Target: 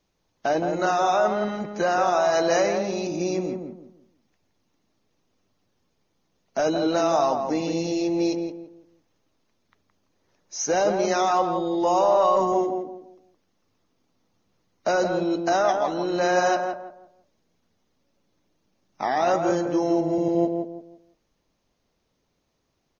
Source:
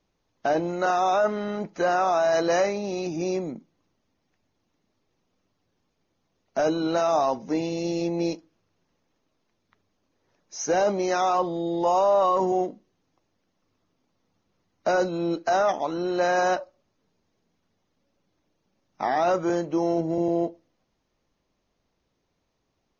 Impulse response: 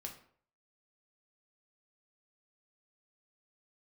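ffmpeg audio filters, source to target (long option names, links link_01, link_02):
-filter_complex "[0:a]highshelf=frequency=3700:gain=5.5,asplit=2[link_01][link_02];[link_02]adelay=168,lowpass=frequency=1300:poles=1,volume=-4dB,asplit=2[link_03][link_04];[link_04]adelay=168,lowpass=frequency=1300:poles=1,volume=0.31,asplit=2[link_05][link_06];[link_06]adelay=168,lowpass=frequency=1300:poles=1,volume=0.31,asplit=2[link_07][link_08];[link_08]adelay=168,lowpass=frequency=1300:poles=1,volume=0.31[link_09];[link_03][link_05][link_07][link_09]amix=inputs=4:normalize=0[link_10];[link_01][link_10]amix=inputs=2:normalize=0"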